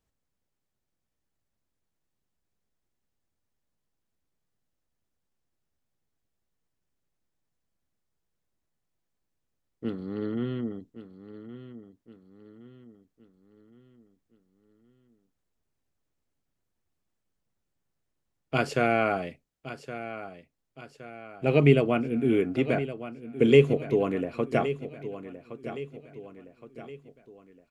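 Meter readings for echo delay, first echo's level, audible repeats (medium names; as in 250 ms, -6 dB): 1117 ms, -13.0 dB, 4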